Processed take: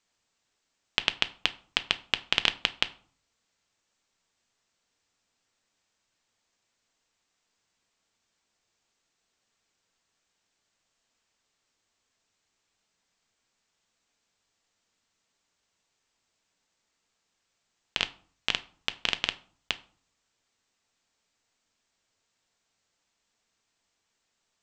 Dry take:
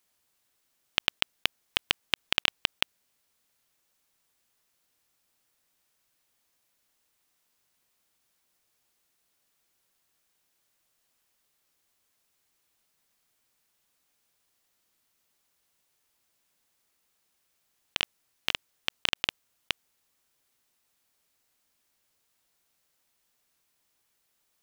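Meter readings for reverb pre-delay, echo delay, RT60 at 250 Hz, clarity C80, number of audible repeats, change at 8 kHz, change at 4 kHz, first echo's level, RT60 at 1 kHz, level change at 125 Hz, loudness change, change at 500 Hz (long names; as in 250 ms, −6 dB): 4 ms, no echo audible, 0.60 s, 23.0 dB, no echo audible, −1.5 dB, 0.0 dB, no echo audible, 0.50 s, +0.5 dB, +0.5 dB, +0.5 dB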